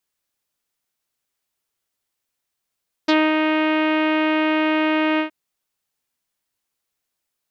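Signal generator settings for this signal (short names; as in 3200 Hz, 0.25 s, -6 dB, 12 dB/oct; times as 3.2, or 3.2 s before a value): synth note saw D#4 24 dB/oct, low-pass 2700 Hz, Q 1.9, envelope 1 oct, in 0.07 s, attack 11 ms, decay 0.23 s, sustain -4 dB, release 0.11 s, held 2.11 s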